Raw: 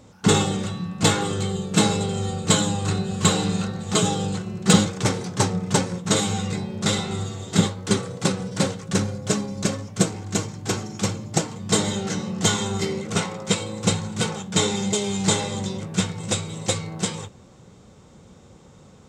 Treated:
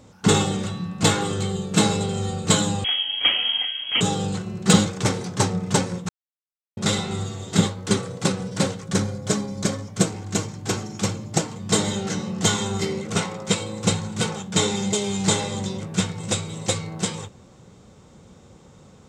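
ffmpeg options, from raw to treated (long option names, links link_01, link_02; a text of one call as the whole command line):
ffmpeg -i in.wav -filter_complex "[0:a]asettb=1/sr,asplit=3[link_01][link_02][link_03];[link_01]atrim=end=2.844[link_04];[link_02]atrim=start=2.84:end=4.01,asetpts=PTS-STARTPTS,afade=type=in:duration=0.004:curve=qsin,afade=type=out:start_time=1.166:duration=0.004:curve=qsin,lowpass=frequency=2900:width_type=q:width=0.5098,lowpass=frequency=2900:width_type=q:width=0.6013,lowpass=frequency=2900:width_type=q:width=0.9,lowpass=frequency=2900:width_type=q:width=2.563,afreqshift=-3400[link_05];[link_03]atrim=start=4.006[link_06];[link_04][link_05]acrossfade=duration=0.004:curve1=hsin:curve2=qsin[link_07];[link_07][link_06]acrossfade=duration=0.004:curve1=qsin:curve2=hsin,asettb=1/sr,asplit=3[link_08][link_09][link_10];[link_08]atrim=end=8.844[link_11];[link_09]atrim=start=8.84:end=9.97,asetpts=PTS-STARTPTS,afade=type=in:duration=0.004:curve=qsin,afade=type=out:start_time=1.126:duration=0.004:curve=qsin,bandreject=frequency=2700:width=12[link_12];[link_10]atrim=start=9.966[link_13];[link_11][link_12]acrossfade=duration=0.004:curve1=hsin:curve2=qsin[link_14];[link_14][link_13]acrossfade=duration=0.004:curve1=qsin:curve2=hsin,asplit=3[link_15][link_16][link_17];[link_15]atrim=end=6.09,asetpts=PTS-STARTPTS,afade=type=out:start_time=6.086:duration=0.004:curve=hsin[link_18];[link_16]atrim=start=6.09:end=6.77,asetpts=PTS-STARTPTS,volume=0[link_19];[link_17]atrim=start=6.77,asetpts=PTS-STARTPTS,afade=type=in:duration=0.004:curve=hsin[link_20];[link_18][link_19][link_20]concat=n=3:v=0:a=1" out.wav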